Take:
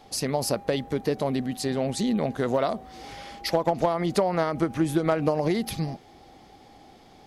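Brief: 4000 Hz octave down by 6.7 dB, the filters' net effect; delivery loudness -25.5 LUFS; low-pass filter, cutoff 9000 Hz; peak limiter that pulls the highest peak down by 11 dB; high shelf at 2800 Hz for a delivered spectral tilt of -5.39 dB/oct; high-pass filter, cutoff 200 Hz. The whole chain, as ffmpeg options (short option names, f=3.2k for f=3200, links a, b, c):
-af "highpass=200,lowpass=9k,highshelf=f=2.8k:g=-5.5,equalizer=f=4k:t=o:g=-3.5,volume=6.5dB,alimiter=limit=-14.5dB:level=0:latency=1"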